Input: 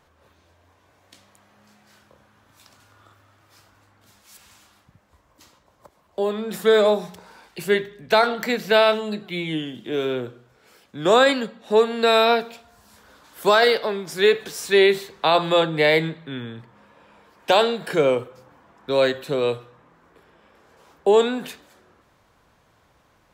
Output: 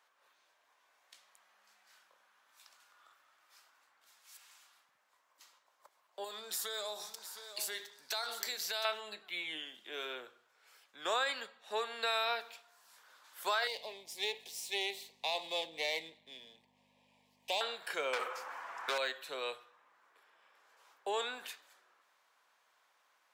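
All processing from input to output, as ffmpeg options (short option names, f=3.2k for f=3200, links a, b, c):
-filter_complex "[0:a]asettb=1/sr,asplit=3[a][b][c];[a]atrim=end=6.244[d];[b]atrim=start=6.24:end=8.85,asetpts=PTS-STARTPTS,afade=t=in:d=0.004:c=qsin,afade=t=out:st=2.606:d=0.004:c=qsin,highshelf=f=3.5k:t=q:w=1.5:g=10,acompressor=threshold=-24dB:ratio=4:attack=3.2:release=140:knee=1:detection=peak,aecho=1:1:715:0.282,atrim=end_sample=115101[e];[c]atrim=start=8.846[f];[d][e]acrossfade=d=0.004:c1=hsin:c2=qsin[g];[g][f]acrossfade=d=0.004:c1=qsin:c2=hsin,asettb=1/sr,asplit=3[h][i][j];[h]atrim=end=13.674[k];[i]atrim=start=13.67:end=17.61,asetpts=PTS-STARTPTS,afade=t=in:d=0.004:c=qsin,afade=t=out:st=3.936:d=0.004:c=qsin,aeval=exprs='if(lt(val(0),0),0.447*val(0),val(0))':c=same,asuperstop=centerf=1400:order=4:qfactor=1,aeval=exprs='val(0)+0.0251*(sin(2*PI*50*n/s)+sin(2*PI*2*50*n/s)/2+sin(2*PI*3*50*n/s)/3+sin(2*PI*4*50*n/s)/4+sin(2*PI*5*50*n/s)/5)':c=same[l];[j]atrim=start=17.606[m];[k][l]acrossfade=d=0.004:c1=hsin:c2=qsin[n];[n][m]acrossfade=d=0.004:c1=qsin:c2=hsin,asettb=1/sr,asplit=3[o][p][q];[o]atrim=end=18.134[r];[p]atrim=start=18.13:end=18.98,asetpts=PTS-STARTPTS,afade=t=in:d=0.004:c=qsin,afade=t=out:st=0.846:d=0.004:c=qsin,equalizer=f=3.6k:w=1.8:g=-6.5,aeval=exprs='val(0)+0.00178*(sin(2*PI*50*n/s)+sin(2*PI*2*50*n/s)/2+sin(2*PI*3*50*n/s)/3+sin(2*PI*4*50*n/s)/4+sin(2*PI*5*50*n/s)/5)':c=same,asplit=2[s][t];[t]highpass=f=720:p=1,volume=29dB,asoftclip=type=tanh:threshold=-10.5dB[u];[s][u]amix=inputs=2:normalize=0,lowpass=f=4.7k:p=1,volume=-6dB[v];[q]atrim=start=18.976[w];[r][v]acrossfade=d=0.004:c1=hsin:c2=qsin[x];[x][w]acrossfade=d=0.004:c1=qsin:c2=hsin,highpass=950,acompressor=threshold=-23dB:ratio=3,volume=-8dB"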